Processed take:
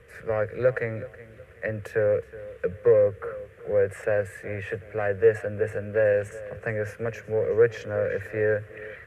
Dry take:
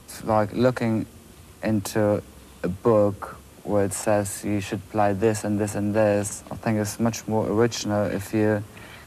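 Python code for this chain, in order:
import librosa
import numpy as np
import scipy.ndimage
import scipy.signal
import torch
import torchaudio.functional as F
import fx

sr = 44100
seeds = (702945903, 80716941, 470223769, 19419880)

p1 = 10.0 ** (-22.0 / 20.0) * np.tanh(x / 10.0 ** (-22.0 / 20.0))
p2 = x + (p1 * librosa.db_to_amplitude(-10.0))
p3 = fx.curve_eq(p2, sr, hz=(130.0, 290.0, 460.0, 870.0, 1800.0, 4200.0), db=(0, -17, 11, -13, 11, -16))
p4 = fx.echo_feedback(p3, sr, ms=371, feedback_pct=35, wet_db=-17.5)
y = p4 * librosa.db_to_amplitude(-7.0)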